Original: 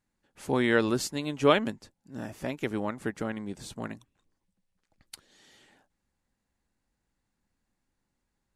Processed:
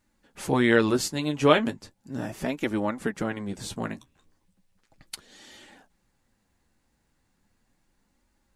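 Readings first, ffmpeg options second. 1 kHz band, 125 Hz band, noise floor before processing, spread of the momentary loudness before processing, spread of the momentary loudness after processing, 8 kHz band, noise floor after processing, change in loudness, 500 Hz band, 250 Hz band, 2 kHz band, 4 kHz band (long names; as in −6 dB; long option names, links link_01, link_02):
+3.5 dB, +4.5 dB, −82 dBFS, 18 LU, 21 LU, +4.5 dB, −72 dBFS, +3.5 dB, +3.0 dB, +4.0 dB, +3.5 dB, +3.5 dB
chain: -filter_complex "[0:a]asplit=2[link_01][link_02];[link_02]acompressor=threshold=-44dB:ratio=6,volume=2dB[link_03];[link_01][link_03]amix=inputs=2:normalize=0,flanger=delay=3.3:depth=9.9:regen=-34:speed=0.36:shape=sinusoidal,volume=6dB"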